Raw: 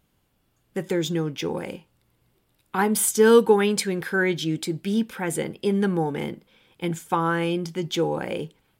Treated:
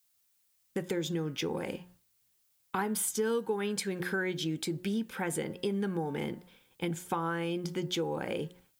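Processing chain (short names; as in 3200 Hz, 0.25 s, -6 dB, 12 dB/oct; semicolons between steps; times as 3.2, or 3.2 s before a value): de-hum 179.7 Hz, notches 11; expander -51 dBFS; compressor 4:1, threshold -31 dBFS, peak gain reduction 17.5 dB; added noise blue -72 dBFS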